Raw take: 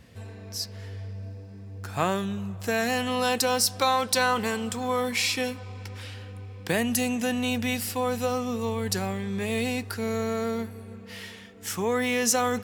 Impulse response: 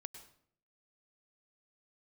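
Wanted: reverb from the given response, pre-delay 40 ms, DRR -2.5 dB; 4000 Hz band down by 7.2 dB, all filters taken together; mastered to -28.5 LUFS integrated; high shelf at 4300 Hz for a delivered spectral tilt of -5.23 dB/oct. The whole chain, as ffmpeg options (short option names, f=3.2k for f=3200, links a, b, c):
-filter_complex "[0:a]equalizer=f=4k:t=o:g=-6.5,highshelf=f=4.3k:g=-5,asplit=2[a][b];[1:a]atrim=start_sample=2205,adelay=40[c];[b][c]afir=irnorm=-1:irlink=0,volume=7dB[d];[a][d]amix=inputs=2:normalize=0,volume=-5dB"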